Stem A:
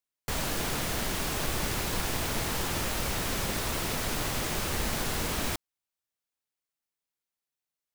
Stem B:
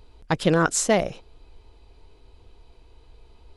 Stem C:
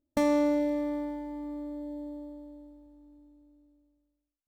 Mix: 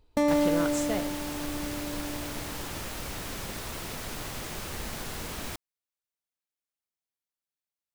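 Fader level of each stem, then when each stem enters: -6.0 dB, -13.0 dB, +1.0 dB; 0.00 s, 0.00 s, 0.00 s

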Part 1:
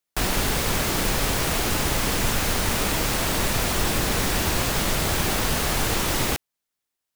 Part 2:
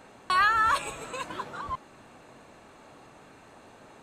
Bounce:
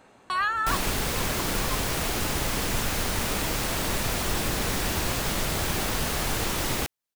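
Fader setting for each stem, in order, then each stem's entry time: -4.0 dB, -3.5 dB; 0.50 s, 0.00 s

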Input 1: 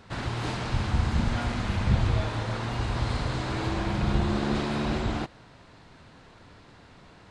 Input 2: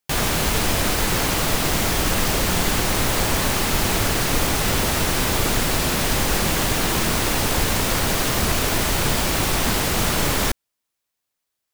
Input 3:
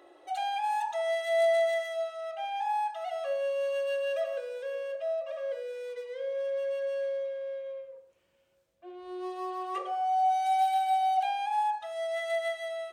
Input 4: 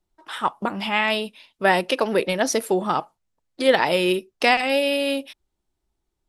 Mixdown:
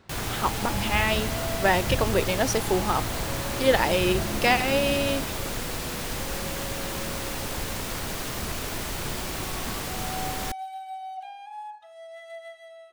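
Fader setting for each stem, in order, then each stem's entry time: -5.5 dB, -11.0 dB, -10.5 dB, -3.5 dB; 0.00 s, 0.00 s, 0.00 s, 0.00 s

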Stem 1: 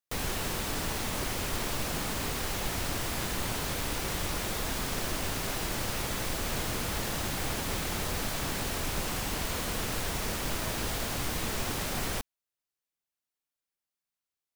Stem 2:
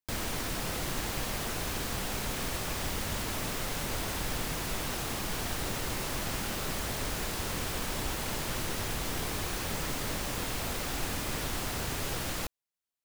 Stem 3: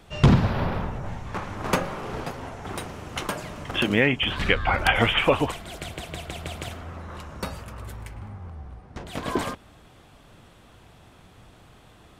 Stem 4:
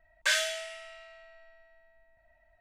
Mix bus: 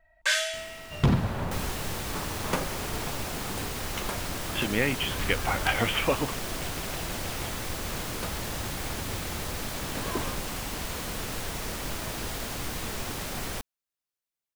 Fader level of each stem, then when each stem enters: -1.5 dB, -13.5 dB, -6.0 dB, +1.5 dB; 1.40 s, 0.45 s, 0.80 s, 0.00 s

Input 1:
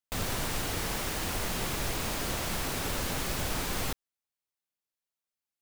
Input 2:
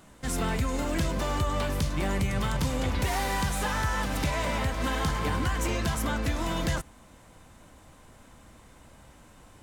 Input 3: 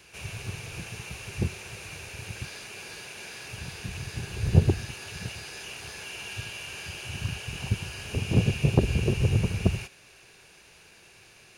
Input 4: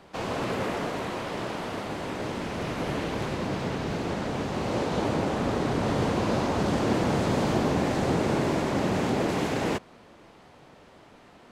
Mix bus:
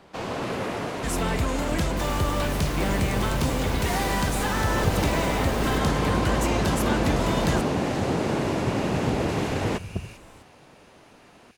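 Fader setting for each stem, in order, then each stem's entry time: -6.0 dB, +2.0 dB, -7.5 dB, 0.0 dB; 1.85 s, 0.80 s, 0.30 s, 0.00 s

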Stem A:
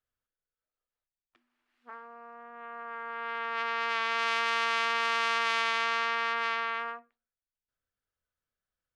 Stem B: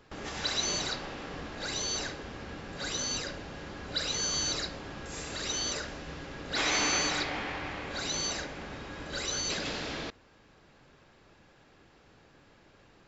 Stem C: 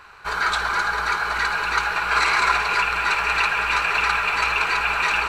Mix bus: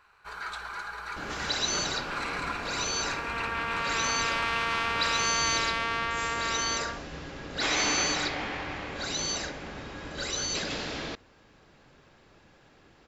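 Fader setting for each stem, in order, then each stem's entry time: -1.0 dB, +1.5 dB, -15.5 dB; 0.00 s, 1.05 s, 0.00 s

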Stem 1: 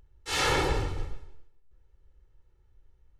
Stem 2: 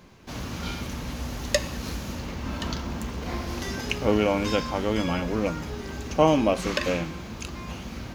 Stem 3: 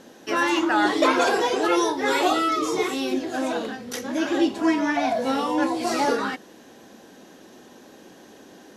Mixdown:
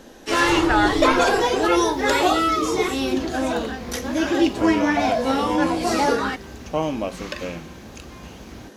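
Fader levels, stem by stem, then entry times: +1.0 dB, -4.5 dB, +2.5 dB; 0.00 s, 0.55 s, 0.00 s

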